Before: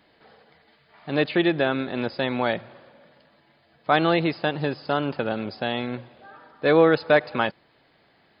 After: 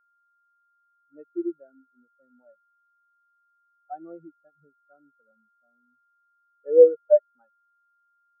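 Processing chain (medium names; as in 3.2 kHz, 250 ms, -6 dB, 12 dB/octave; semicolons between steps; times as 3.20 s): level-controlled noise filter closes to 380 Hz, open at -16 dBFS; whistle 1.4 kHz -28 dBFS; spectral contrast expander 4:1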